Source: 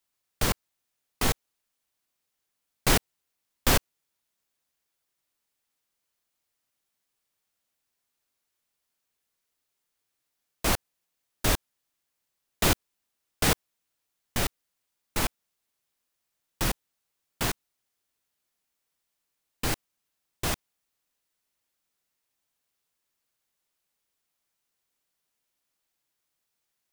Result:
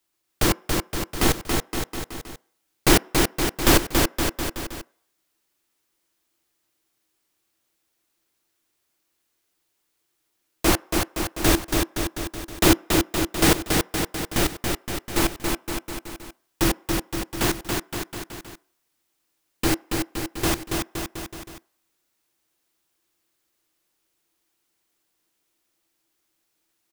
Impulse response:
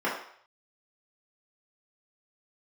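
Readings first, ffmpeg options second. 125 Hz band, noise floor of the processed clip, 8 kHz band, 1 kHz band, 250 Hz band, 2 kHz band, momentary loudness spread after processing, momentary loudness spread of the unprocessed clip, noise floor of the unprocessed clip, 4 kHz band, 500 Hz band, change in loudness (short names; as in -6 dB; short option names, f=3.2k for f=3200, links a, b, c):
+6.5 dB, -75 dBFS, +7.0 dB, +7.0 dB, +12.5 dB, +7.0 dB, 16 LU, 10 LU, -82 dBFS, +7.0 dB, +10.0 dB, +5.0 dB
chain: -filter_complex "[0:a]equalizer=f=330:t=o:w=0.25:g=13.5,aecho=1:1:280|518|720.3|892.3|1038:0.631|0.398|0.251|0.158|0.1,asplit=2[a][b];[1:a]atrim=start_sample=2205[c];[b][c]afir=irnorm=-1:irlink=0,volume=-33dB[d];[a][d]amix=inputs=2:normalize=0,volume=4.5dB"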